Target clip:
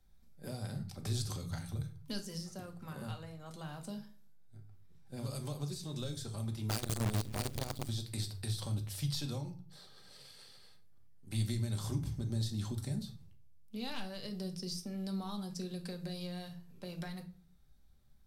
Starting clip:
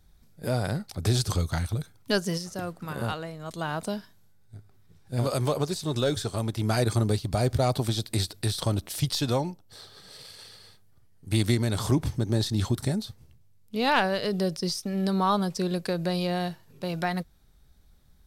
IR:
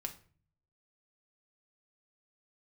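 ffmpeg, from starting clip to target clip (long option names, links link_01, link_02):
-filter_complex "[0:a]acrossover=split=200|3500[link_01][link_02][link_03];[link_02]acompressor=threshold=-36dB:ratio=5[link_04];[link_01][link_04][link_03]amix=inputs=3:normalize=0[link_05];[1:a]atrim=start_sample=2205,afade=type=out:start_time=0.41:duration=0.01,atrim=end_sample=18522[link_06];[link_05][link_06]afir=irnorm=-1:irlink=0,asettb=1/sr,asplit=3[link_07][link_08][link_09];[link_07]atrim=end=6.694[link_10];[link_08]atrim=start=6.69:end=7.89,asetpts=PTS-STARTPTS,afade=type=in:duration=0.004:curve=qsin,afade=type=out:start_time=1.196:duration=0.004:curve=qsin,acrusher=bits=5:dc=4:mix=0:aa=0.000001[link_11];[link_09]atrim=start=7.886[link_12];[link_10][link_11]acrossfade=duration=0.004:curve1=hsin:curve2=qsin[link_13];[link_13][link_12]acrossfade=duration=0.004:curve1=qsin:curve2=hsin,volume=-8dB"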